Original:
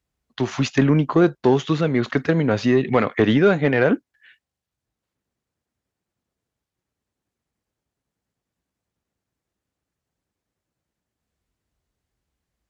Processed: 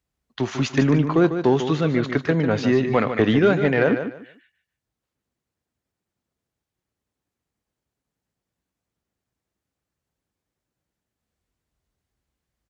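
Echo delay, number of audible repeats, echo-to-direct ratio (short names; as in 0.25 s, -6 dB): 0.148 s, 3, -9.0 dB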